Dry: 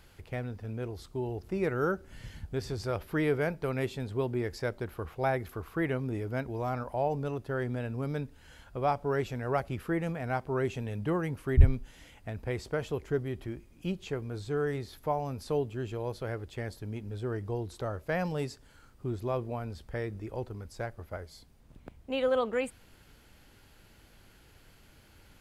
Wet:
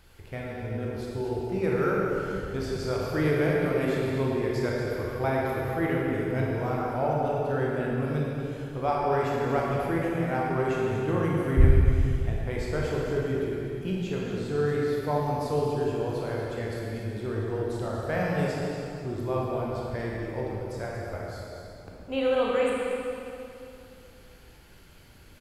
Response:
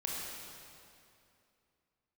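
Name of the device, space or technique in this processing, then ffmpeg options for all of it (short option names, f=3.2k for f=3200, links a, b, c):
cave: -filter_complex "[0:a]aecho=1:1:238:0.355[a];[1:a]atrim=start_sample=2205[b];[a][b]afir=irnorm=-1:irlink=0,volume=1.5dB"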